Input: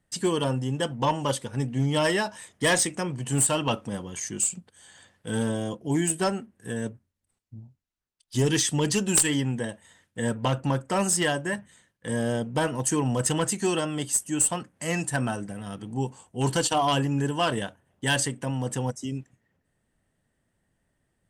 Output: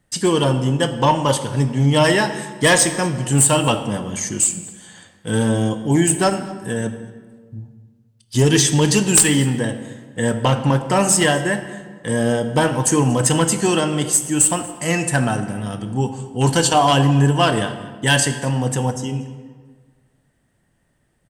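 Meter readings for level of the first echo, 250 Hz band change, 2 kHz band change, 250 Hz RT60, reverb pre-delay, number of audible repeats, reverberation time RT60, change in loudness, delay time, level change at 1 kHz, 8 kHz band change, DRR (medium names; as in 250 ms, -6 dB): -23.5 dB, +9.0 dB, +8.5 dB, 1.7 s, 3 ms, 1, 1.6 s, +9.0 dB, 236 ms, +9.0 dB, +8.5 dB, 8.0 dB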